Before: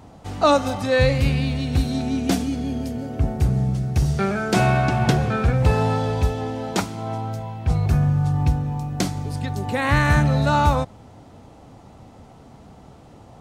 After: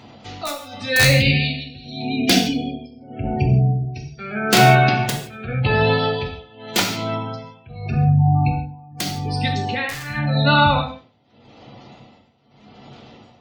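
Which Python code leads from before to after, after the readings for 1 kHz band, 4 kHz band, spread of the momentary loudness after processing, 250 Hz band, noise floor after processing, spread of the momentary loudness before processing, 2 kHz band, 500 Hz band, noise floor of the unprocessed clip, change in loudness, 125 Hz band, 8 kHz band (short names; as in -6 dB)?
+3.0 dB, +10.0 dB, 17 LU, +0.5 dB, -52 dBFS, 10 LU, +6.0 dB, 0.0 dB, -46 dBFS, +2.5 dB, +0.5 dB, +7.0 dB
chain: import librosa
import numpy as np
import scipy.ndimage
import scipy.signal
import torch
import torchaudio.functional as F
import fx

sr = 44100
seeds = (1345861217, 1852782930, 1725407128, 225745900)

p1 = fx.weighting(x, sr, curve='D')
p2 = fx.spec_gate(p1, sr, threshold_db=-20, keep='strong')
p3 = fx.low_shelf(p2, sr, hz=230.0, db=4.0)
p4 = fx.rider(p3, sr, range_db=4, speed_s=2.0)
p5 = p3 + (p4 * librosa.db_to_amplitude(-1.0))
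p6 = (np.mod(10.0 ** (-0.5 / 20.0) * p5 + 1.0, 2.0) - 1.0) / 10.0 ** (-0.5 / 20.0)
p7 = p6 * (1.0 - 0.92 / 2.0 + 0.92 / 2.0 * np.cos(2.0 * np.pi * 0.85 * (np.arange(len(p6)) / sr)))
p8 = p7 + fx.echo_feedback(p7, sr, ms=96, feedback_pct=25, wet_db=-23.0, dry=0)
p9 = fx.rev_gated(p8, sr, seeds[0], gate_ms=190, shape='falling', drr_db=1.0)
y = p9 * librosa.db_to_amplitude(-3.5)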